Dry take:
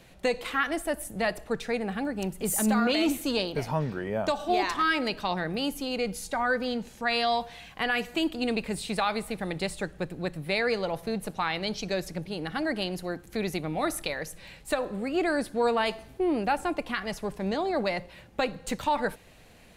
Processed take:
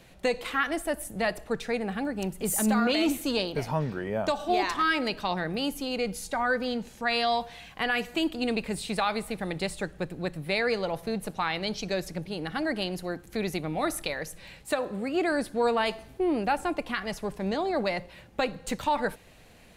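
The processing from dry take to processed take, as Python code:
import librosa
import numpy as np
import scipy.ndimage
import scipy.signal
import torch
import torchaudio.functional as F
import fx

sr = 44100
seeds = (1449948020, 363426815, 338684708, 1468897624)

y = fx.highpass(x, sr, hz=63.0, slope=12, at=(14.62, 15.32))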